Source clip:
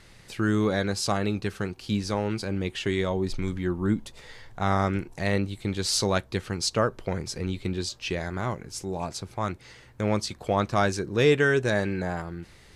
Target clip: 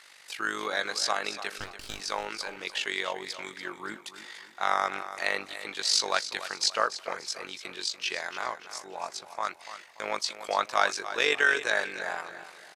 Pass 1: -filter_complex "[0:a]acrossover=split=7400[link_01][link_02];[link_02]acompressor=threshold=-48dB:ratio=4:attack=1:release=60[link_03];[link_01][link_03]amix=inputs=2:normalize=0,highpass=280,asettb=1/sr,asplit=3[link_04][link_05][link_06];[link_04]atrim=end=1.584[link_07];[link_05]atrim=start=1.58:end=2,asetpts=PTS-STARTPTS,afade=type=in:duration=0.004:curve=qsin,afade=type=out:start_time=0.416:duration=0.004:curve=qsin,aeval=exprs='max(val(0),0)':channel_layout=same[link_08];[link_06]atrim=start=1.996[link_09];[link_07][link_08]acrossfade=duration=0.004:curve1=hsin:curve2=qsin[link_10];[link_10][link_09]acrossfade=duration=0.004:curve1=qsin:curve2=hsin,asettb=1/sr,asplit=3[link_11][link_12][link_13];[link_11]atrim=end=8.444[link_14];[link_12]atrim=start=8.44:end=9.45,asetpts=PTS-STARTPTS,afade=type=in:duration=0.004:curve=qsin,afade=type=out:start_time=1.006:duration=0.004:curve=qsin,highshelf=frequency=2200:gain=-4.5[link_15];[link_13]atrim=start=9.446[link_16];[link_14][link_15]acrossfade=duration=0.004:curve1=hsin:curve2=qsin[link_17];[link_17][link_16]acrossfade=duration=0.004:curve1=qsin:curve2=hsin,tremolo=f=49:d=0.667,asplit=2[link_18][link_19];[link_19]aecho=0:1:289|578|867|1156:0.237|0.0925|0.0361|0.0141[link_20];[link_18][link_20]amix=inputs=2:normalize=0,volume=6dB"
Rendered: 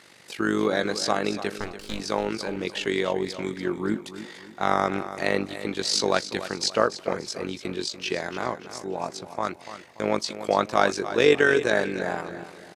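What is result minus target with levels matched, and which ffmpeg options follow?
250 Hz band +13.5 dB
-filter_complex "[0:a]acrossover=split=7400[link_01][link_02];[link_02]acompressor=threshold=-48dB:ratio=4:attack=1:release=60[link_03];[link_01][link_03]amix=inputs=2:normalize=0,highpass=930,asettb=1/sr,asplit=3[link_04][link_05][link_06];[link_04]atrim=end=1.584[link_07];[link_05]atrim=start=1.58:end=2,asetpts=PTS-STARTPTS,afade=type=in:duration=0.004:curve=qsin,afade=type=out:start_time=0.416:duration=0.004:curve=qsin,aeval=exprs='max(val(0),0)':channel_layout=same[link_08];[link_06]atrim=start=1.996[link_09];[link_07][link_08]acrossfade=duration=0.004:curve1=hsin:curve2=qsin[link_10];[link_10][link_09]acrossfade=duration=0.004:curve1=qsin:curve2=hsin,asettb=1/sr,asplit=3[link_11][link_12][link_13];[link_11]atrim=end=8.444[link_14];[link_12]atrim=start=8.44:end=9.45,asetpts=PTS-STARTPTS,afade=type=in:duration=0.004:curve=qsin,afade=type=out:start_time=1.006:duration=0.004:curve=qsin,highshelf=frequency=2200:gain=-4.5[link_15];[link_13]atrim=start=9.446[link_16];[link_14][link_15]acrossfade=duration=0.004:curve1=hsin:curve2=qsin[link_17];[link_17][link_16]acrossfade=duration=0.004:curve1=qsin:curve2=hsin,tremolo=f=49:d=0.667,asplit=2[link_18][link_19];[link_19]aecho=0:1:289|578|867|1156:0.237|0.0925|0.0361|0.0141[link_20];[link_18][link_20]amix=inputs=2:normalize=0,volume=6dB"

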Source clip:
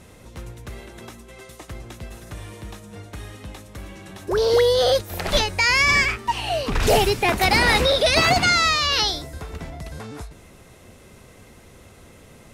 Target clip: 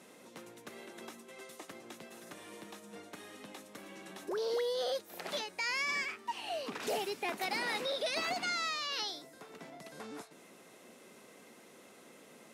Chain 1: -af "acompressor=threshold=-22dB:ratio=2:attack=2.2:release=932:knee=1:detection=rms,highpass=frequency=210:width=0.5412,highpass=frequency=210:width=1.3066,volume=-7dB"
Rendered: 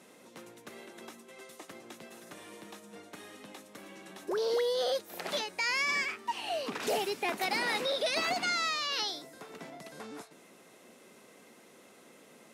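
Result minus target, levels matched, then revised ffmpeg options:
downward compressor: peak gain reduction −4 dB
-af "acompressor=threshold=-30dB:ratio=2:attack=2.2:release=932:knee=1:detection=rms,highpass=frequency=210:width=0.5412,highpass=frequency=210:width=1.3066,volume=-7dB"

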